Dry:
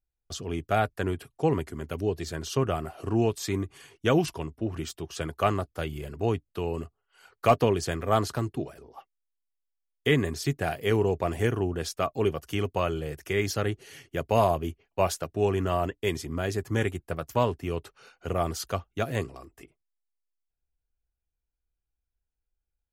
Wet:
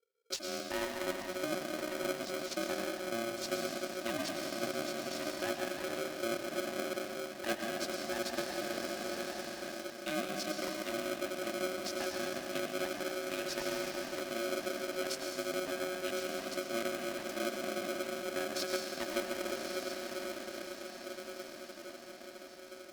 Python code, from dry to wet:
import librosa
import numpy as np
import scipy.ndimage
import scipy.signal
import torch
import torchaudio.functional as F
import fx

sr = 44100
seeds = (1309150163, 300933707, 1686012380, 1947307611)

y = fx.level_steps(x, sr, step_db=9)
y = scipy.signal.sosfilt(scipy.signal.cheby1(3, 1.0, [260.0, 1200.0], 'bandstop', fs=sr, output='sos'), y)
y = fx.low_shelf(y, sr, hz=180.0, db=8.0)
y = fx.echo_diffused(y, sr, ms=1127, feedback_pct=60, wet_db=-9)
y = fx.rev_plate(y, sr, seeds[0], rt60_s=2.8, hf_ratio=0.85, predelay_ms=85, drr_db=0.0)
y = fx.rider(y, sr, range_db=4, speed_s=0.5)
y = fx.peak_eq(y, sr, hz=4800.0, db=11.5, octaves=0.38)
y = y * np.sign(np.sin(2.0 * np.pi * 460.0 * np.arange(len(y)) / sr))
y = y * librosa.db_to_amplitude(-8.0)